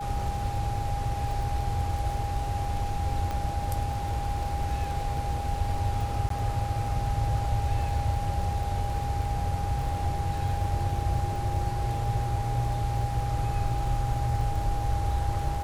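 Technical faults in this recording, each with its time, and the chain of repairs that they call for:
crackle 43/s -35 dBFS
tone 810 Hz -33 dBFS
3.31 pop -19 dBFS
6.29–6.3 gap 13 ms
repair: de-click; notch 810 Hz, Q 30; interpolate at 6.29, 13 ms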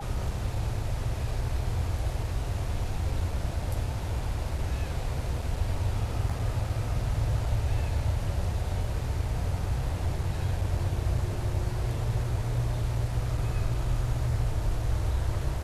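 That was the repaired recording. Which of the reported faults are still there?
3.31 pop

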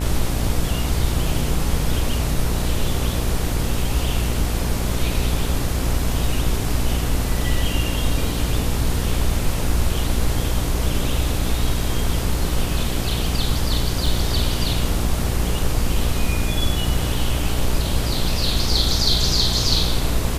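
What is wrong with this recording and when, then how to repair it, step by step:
buzz 60 Hz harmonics 24 -24 dBFS
14.06 gap 3 ms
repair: de-hum 60 Hz, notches 24; interpolate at 14.06, 3 ms

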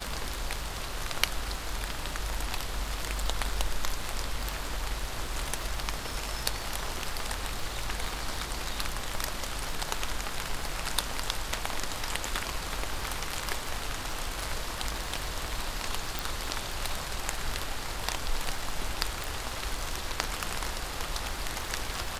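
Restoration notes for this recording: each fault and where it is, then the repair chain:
crackle 42/s -35 dBFS
16.19 pop
19.24 pop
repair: de-click

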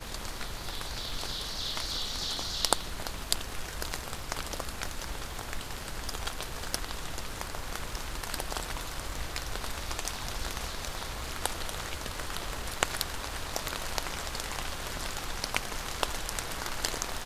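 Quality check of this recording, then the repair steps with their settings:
crackle 59/s -43 dBFS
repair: de-click

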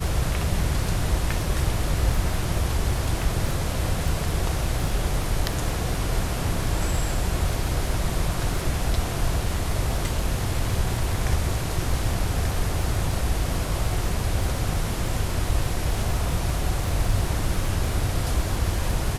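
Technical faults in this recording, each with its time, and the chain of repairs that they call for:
crackle 24/s -29 dBFS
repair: de-click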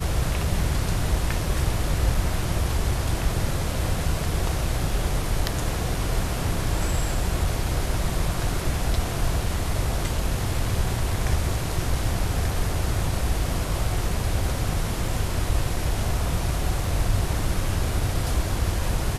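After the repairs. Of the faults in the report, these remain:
none

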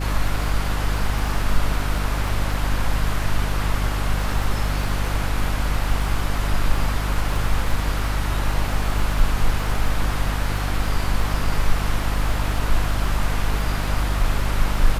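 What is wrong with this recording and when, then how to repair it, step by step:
crackle 25/s -28 dBFS
hum 50 Hz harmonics 6 -24 dBFS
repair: de-click; de-hum 50 Hz, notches 6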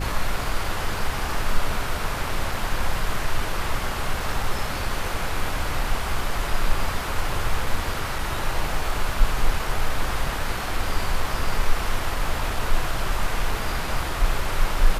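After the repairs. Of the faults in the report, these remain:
none

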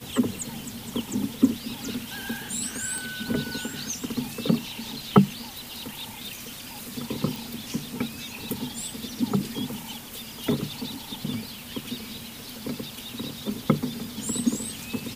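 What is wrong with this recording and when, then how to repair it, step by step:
2.98 pop
7.36 pop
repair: de-click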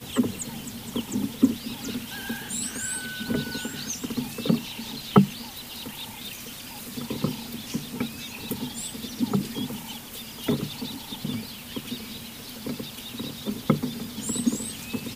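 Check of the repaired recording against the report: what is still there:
none

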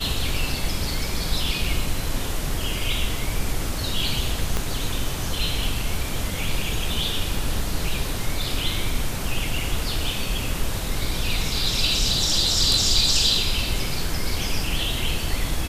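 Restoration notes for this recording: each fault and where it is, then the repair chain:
4.57 pop -9 dBFS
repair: de-click

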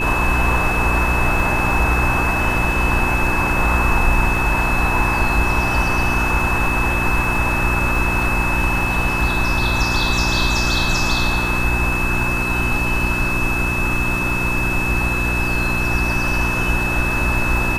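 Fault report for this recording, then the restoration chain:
crackle 29/s -25 dBFS
hum 60 Hz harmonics 6 -24 dBFS
tone 2600 Hz -21 dBFS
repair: de-click; de-hum 60 Hz, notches 6; notch 2600 Hz, Q 30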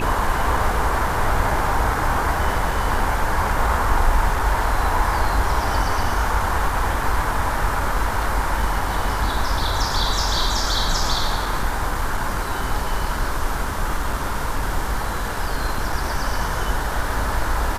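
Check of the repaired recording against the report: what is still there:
none

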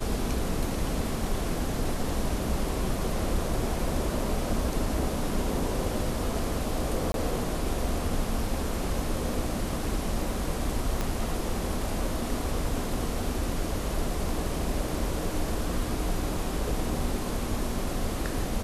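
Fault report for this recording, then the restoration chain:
7.12–7.14 gap 22 ms
11.01 pop -14 dBFS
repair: de-click; interpolate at 7.12, 22 ms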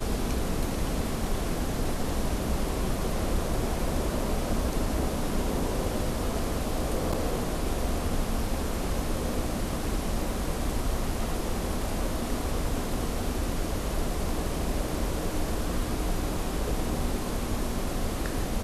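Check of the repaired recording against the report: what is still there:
11.01 pop

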